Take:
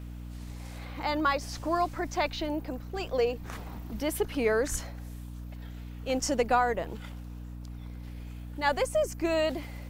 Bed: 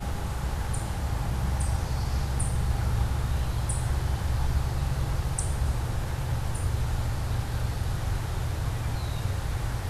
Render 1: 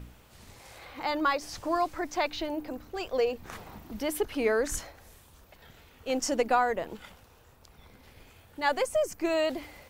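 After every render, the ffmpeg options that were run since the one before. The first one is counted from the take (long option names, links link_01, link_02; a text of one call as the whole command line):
ffmpeg -i in.wav -af "bandreject=frequency=60:width_type=h:width=4,bandreject=frequency=120:width_type=h:width=4,bandreject=frequency=180:width_type=h:width=4,bandreject=frequency=240:width_type=h:width=4,bandreject=frequency=300:width_type=h:width=4" out.wav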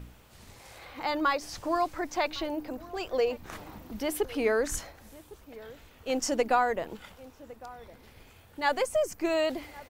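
ffmpeg -i in.wav -filter_complex "[0:a]asplit=2[link_01][link_02];[link_02]adelay=1108,volume=-19dB,highshelf=frequency=4000:gain=-24.9[link_03];[link_01][link_03]amix=inputs=2:normalize=0" out.wav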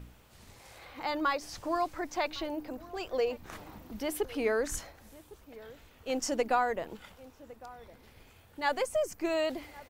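ffmpeg -i in.wav -af "volume=-3dB" out.wav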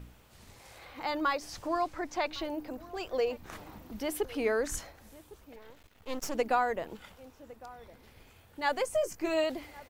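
ffmpeg -i in.wav -filter_complex "[0:a]asettb=1/sr,asplit=3[link_01][link_02][link_03];[link_01]atrim=end=1.674[link_04];[link_02]atrim=start=1.67:end=2.34,asetpts=PTS-STARTPTS,afade=type=in:duration=0.004:curve=qsin,afade=type=out:start_time=0.666:duration=0.004:curve=qsin,highshelf=frequency=11000:gain=-9[link_05];[link_03]atrim=start=2.336[link_06];[link_04][link_05]acrossfade=duration=0.004:curve1=hsin:curve2=qsin[link_07];[link_07][link_06]acrossfade=duration=0.004:curve1=qsin:curve2=hsin,asettb=1/sr,asplit=3[link_08][link_09][link_10];[link_08]atrim=end=5.564[link_11];[link_09]atrim=start=5.56:end=6.35,asetpts=PTS-STARTPTS,afade=type=in:duration=0.004:curve=qsin,afade=type=out:start_time=0.786:duration=0.004:curve=qsin,aeval=exprs='max(val(0),0)':channel_layout=same[link_12];[link_10]atrim=start=6.346[link_13];[link_11][link_12]acrossfade=duration=0.004:curve1=hsin:curve2=qsin[link_14];[link_14][link_13]acrossfade=duration=0.004:curve1=qsin:curve2=hsin,asettb=1/sr,asplit=3[link_15][link_16][link_17];[link_15]atrim=end=8.854[link_18];[link_16]atrim=start=8.85:end=9.44,asetpts=PTS-STARTPTS,afade=type=in:duration=0.004:curve=qsin,afade=type=out:start_time=0.586:duration=0.004:curve=qsin,asplit=2[link_19][link_20];[link_20]adelay=19,volume=-8dB[link_21];[link_19][link_21]amix=inputs=2:normalize=0,atrim=end_sample=26019[link_22];[link_17]atrim=start=9.436[link_23];[link_18][link_22]acrossfade=duration=0.004:curve1=hsin:curve2=qsin[link_24];[link_24][link_23]acrossfade=duration=0.004:curve1=qsin:curve2=hsin" out.wav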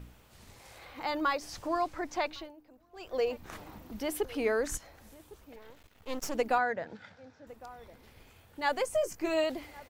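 ffmpeg -i in.wav -filter_complex "[0:a]asettb=1/sr,asplit=3[link_01][link_02][link_03];[link_01]atrim=end=4.774[link_04];[link_02]atrim=start=4.77:end=5.2,asetpts=PTS-STARTPTS,afade=type=in:duration=0.004:curve=qsin,afade=type=out:start_time=0.426:duration=0.004:curve=qsin,acompressor=threshold=-48dB:ratio=6:attack=3.2:release=140:knee=1:detection=peak[link_05];[link_03]atrim=start=5.196[link_06];[link_04][link_05]acrossfade=duration=0.004:curve1=hsin:curve2=qsin[link_07];[link_07][link_06]acrossfade=duration=0.004:curve1=qsin:curve2=hsin,asettb=1/sr,asplit=3[link_08][link_09][link_10];[link_08]atrim=end=6.584[link_11];[link_09]atrim=start=6.58:end=7.47,asetpts=PTS-STARTPTS,afade=type=in:duration=0.004:curve=qsin,afade=type=out:start_time=0.886:duration=0.004:curve=qsin,highpass=frequency=100:width=0.5412,highpass=frequency=100:width=1.3066,equalizer=frequency=100:width_type=q:width=4:gain=6,equalizer=frequency=370:width_type=q:width=4:gain=-8,equalizer=frequency=1100:width_type=q:width=4:gain=-8,equalizer=frequency=1600:width_type=q:width=4:gain=8,equalizer=frequency=2900:width_type=q:width=4:gain=-10,lowpass=frequency=5500:width=0.5412,lowpass=frequency=5500:width=1.3066[link_12];[link_10]atrim=start=7.466[link_13];[link_11][link_12]acrossfade=duration=0.004:curve1=hsin:curve2=qsin[link_14];[link_14][link_13]acrossfade=duration=0.004:curve1=qsin:curve2=hsin,asplit=3[link_15][link_16][link_17];[link_15]atrim=end=2.53,asetpts=PTS-STARTPTS,afade=type=out:start_time=2.22:duration=0.31:silence=0.125893[link_18];[link_16]atrim=start=2.53:end=2.91,asetpts=PTS-STARTPTS,volume=-18dB[link_19];[link_17]atrim=start=2.91,asetpts=PTS-STARTPTS,afade=type=in:duration=0.31:silence=0.125893[link_20];[link_18][link_19][link_20]concat=n=3:v=0:a=1" out.wav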